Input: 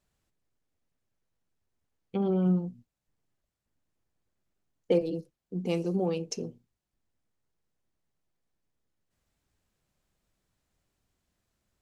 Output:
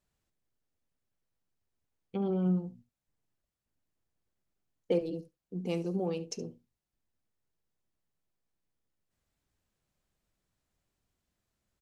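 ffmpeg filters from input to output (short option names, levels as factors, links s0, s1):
-af "aecho=1:1:71:0.126,volume=0.631"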